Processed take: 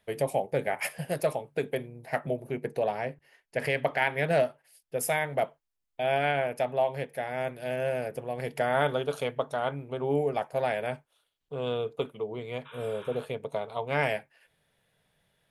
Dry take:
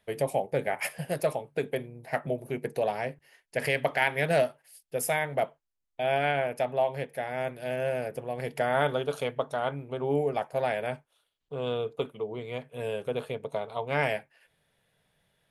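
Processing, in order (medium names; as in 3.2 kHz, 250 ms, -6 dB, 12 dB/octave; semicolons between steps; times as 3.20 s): 2.37–5.01 s: treble shelf 3.9 kHz -7 dB; 12.68–13.17 s: spectral replace 840–3900 Hz after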